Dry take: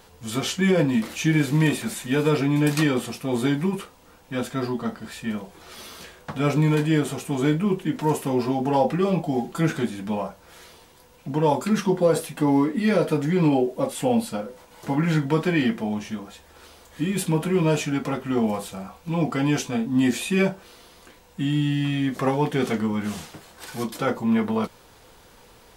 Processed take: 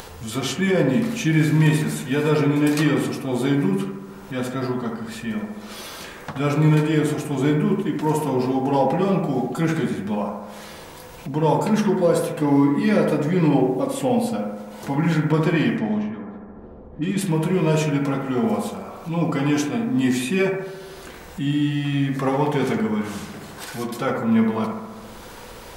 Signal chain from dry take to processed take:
0:15.32–0:17.21: low-pass that shuts in the quiet parts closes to 300 Hz, open at −19 dBFS
bucket-brigade delay 71 ms, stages 1,024, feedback 62%, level −4 dB
upward compression, threshold −28 dBFS

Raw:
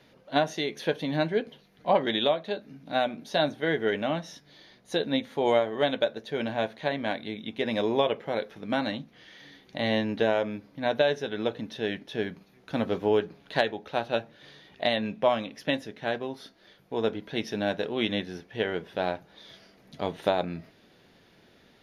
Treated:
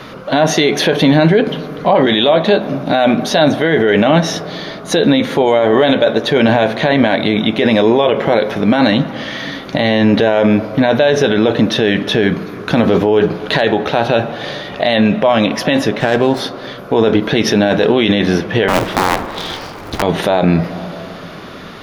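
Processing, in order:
0:18.68–0:20.02: sub-harmonics by changed cycles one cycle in 2, inverted
high-shelf EQ 4,500 Hz −4.5 dB
in parallel at −1.5 dB: compressor whose output falls as the input rises −32 dBFS
on the sum: noise in a band 1,000–1,500 Hz −59 dBFS
on a send at −17 dB: convolution reverb RT60 2.8 s, pre-delay 5 ms
on the sum: boost into a limiter +19.5 dB
0:16.00–0:16.40: windowed peak hold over 3 samples
level −1 dB

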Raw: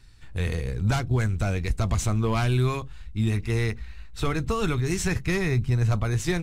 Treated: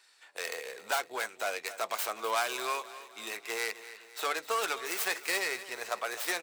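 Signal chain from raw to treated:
stylus tracing distortion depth 0.32 ms
high-pass filter 530 Hz 24 dB per octave
parametric band 8,200 Hz +3 dB 0.28 octaves
repeating echo 256 ms, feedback 49%, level −15 dB

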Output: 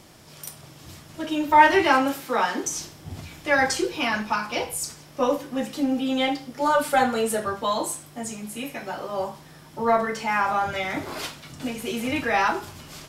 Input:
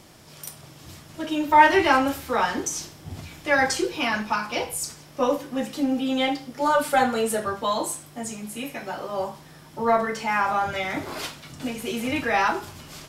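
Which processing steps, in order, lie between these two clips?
0:01.78–0:02.63: high-pass filter 89 Hz → 210 Hz 24 dB per octave

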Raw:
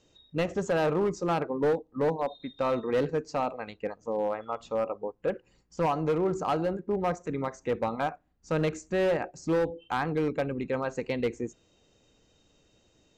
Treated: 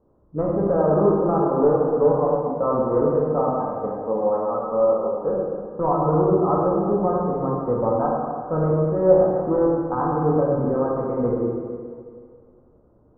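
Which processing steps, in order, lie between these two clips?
elliptic low-pass filter 1,200 Hz, stop band 70 dB
dense smooth reverb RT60 2.1 s, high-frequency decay 0.9×, DRR −4.5 dB
level +3.5 dB

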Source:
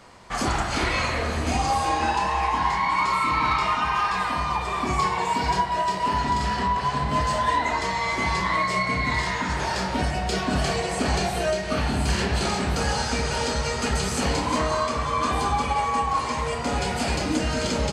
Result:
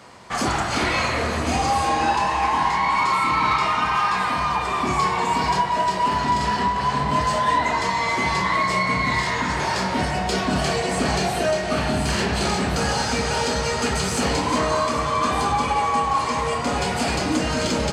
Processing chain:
high-pass filter 85 Hz 12 dB per octave
in parallel at −5 dB: soft clipping −24.5 dBFS, distortion −11 dB
on the sum: delay that swaps between a low-pass and a high-pass 402 ms, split 1,700 Hz, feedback 53%, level −9 dB

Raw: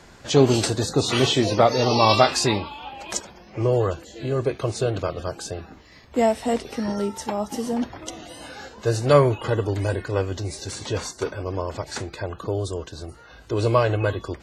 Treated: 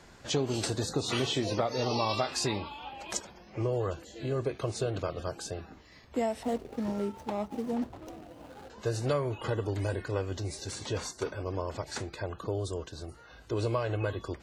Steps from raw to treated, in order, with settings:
0:06.43–0:08.70: running median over 25 samples
downward compressor 5 to 1, threshold −20 dBFS, peak gain reduction 10 dB
level −6 dB

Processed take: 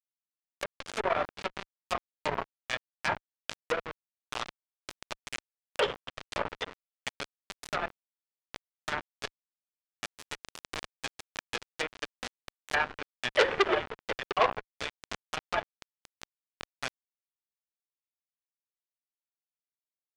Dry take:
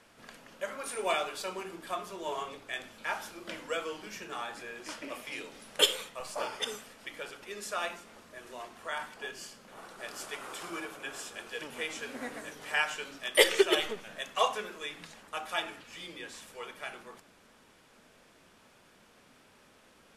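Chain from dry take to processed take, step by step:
noise reduction from a noise print of the clip's start 11 dB
Butterworth high-pass 360 Hz 48 dB per octave
echo with a time of its own for lows and highs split 2,100 Hz, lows 702 ms, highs 247 ms, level −16 dB
in parallel at −1 dB: downward compressor 16 to 1, threshold −47 dBFS, peak gain reduction 31.5 dB
on the sum: bit reduction 5 bits
treble cut that deepens with the level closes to 1,500 Hz, closed at −29 dBFS
high-frequency loss of the air 51 metres
saturating transformer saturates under 2,800 Hz
level +6 dB

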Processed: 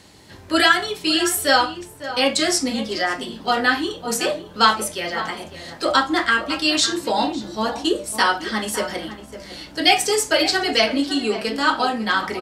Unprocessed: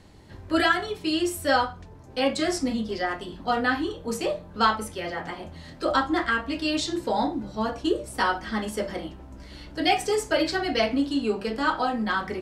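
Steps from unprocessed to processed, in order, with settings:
high-pass filter 150 Hz 6 dB per octave
high-shelf EQ 2,300 Hz +10 dB
slap from a distant wall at 95 metres, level −12 dB
level +3.5 dB

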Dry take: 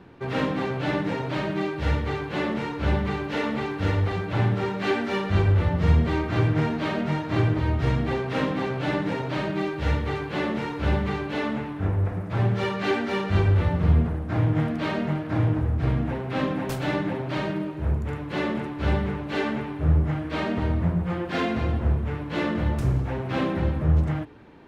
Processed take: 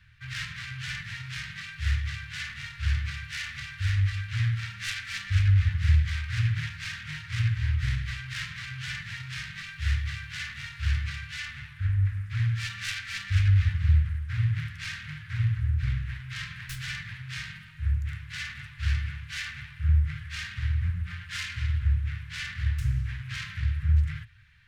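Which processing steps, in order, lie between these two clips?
phase distortion by the signal itself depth 0.53 ms
elliptic band-stop filter 110–1,700 Hz, stop band 50 dB

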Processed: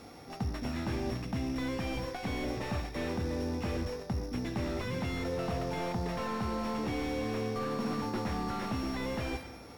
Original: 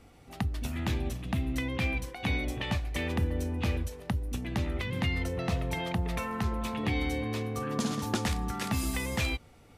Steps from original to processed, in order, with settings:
samples sorted by size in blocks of 8 samples
high-pass filter 250 Hz 6 dB per octave
in parallel at −5 dB: wave folding −31.5 dBFS
on the sum: high-shelf EQ 6,200 Hz −7.5 dB
notch filter 3,000 Hz, Q 8.7
convolution reverb RT60 1.4 s, pre-delay 3 ms, DRR 15 dB
reversed playback
downward compressor, threshold −37 dBFS, peak gain reduction 10.5 dB
reversed playback
slew-rate limiting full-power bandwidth 11 Hz
level +6.5 dB

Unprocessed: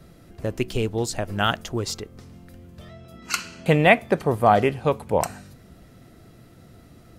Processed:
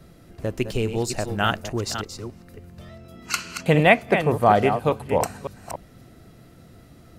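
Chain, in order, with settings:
delay that plays each chunk backwards 288 ms, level −8.5 dB
0:00.65–0:03.09: notch filter 3,300 Hz, Q 13

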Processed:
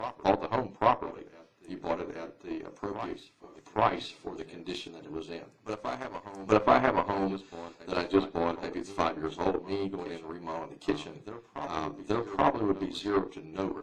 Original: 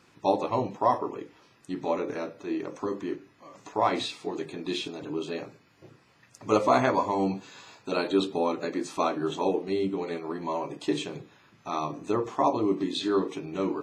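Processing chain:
harmonic generator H 6 −27 dB, 7 −21 dB, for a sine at −8.5 dBFS
backwards echo 829 ms −13 dB
treble cut that deepens with the level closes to 3,000 Hz, closed at −21.5 dBFS

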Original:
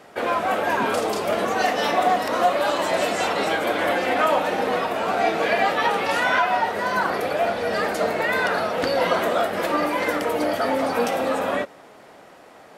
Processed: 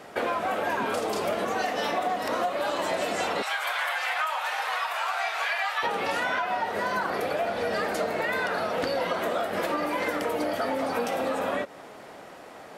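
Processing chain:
0:03.42–0:05.83: high-pass filter 900 Hz 24 dB per octave
downward compressor, threshold −27 dBFS, peak gain reduction 12.5 dB
level +2 dB

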